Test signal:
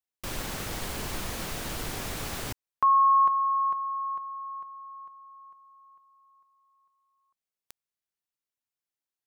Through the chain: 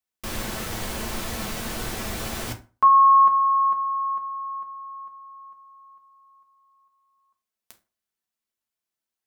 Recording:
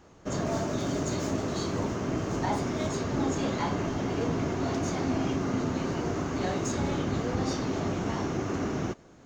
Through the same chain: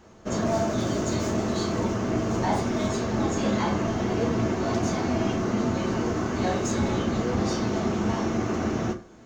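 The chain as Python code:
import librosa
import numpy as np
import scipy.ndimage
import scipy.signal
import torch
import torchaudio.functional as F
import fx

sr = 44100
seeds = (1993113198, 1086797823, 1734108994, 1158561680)

y = fx.rev_fdn(x, sr, rt60_s=0.35, lf_ratio=1.0, hf_ratio=0.7, size_ms=27.0, drr_db=3.0)
y = y * 10.0 ** (2.0 / 20.0)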